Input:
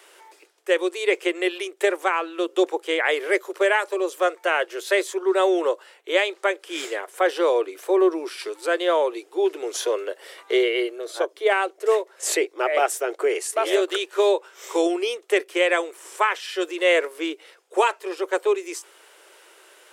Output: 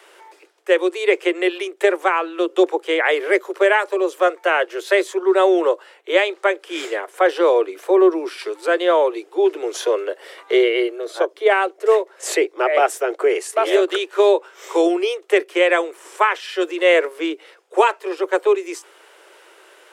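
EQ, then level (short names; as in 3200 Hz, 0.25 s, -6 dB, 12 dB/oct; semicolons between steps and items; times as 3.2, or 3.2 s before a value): steep high-pass 280 Hz 96 dB/oct; high shelf 4000 Hz -8.5 dB; +5.0 dB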